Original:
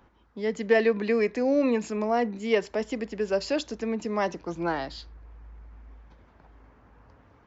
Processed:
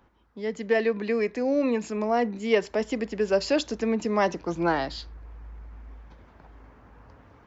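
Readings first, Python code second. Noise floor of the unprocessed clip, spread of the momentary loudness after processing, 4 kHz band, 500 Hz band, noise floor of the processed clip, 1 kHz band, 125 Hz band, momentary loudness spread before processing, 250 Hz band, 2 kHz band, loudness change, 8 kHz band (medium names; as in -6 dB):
-59 dBFS, 20 LU, +2.5 dB, +0.5 dB, -59 dBFS, +2.0 dB, +2.5 dB, 9 LU, +1.0 dB, +0.5 dB, +1.0 dB, no reading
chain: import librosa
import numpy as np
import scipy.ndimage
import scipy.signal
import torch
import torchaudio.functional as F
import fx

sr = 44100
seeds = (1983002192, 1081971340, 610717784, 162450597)

y = fx.rider(x, sr, range_db=10, speed_s=2.0)
y = y * 10.0 ** (1.0 / 20.0)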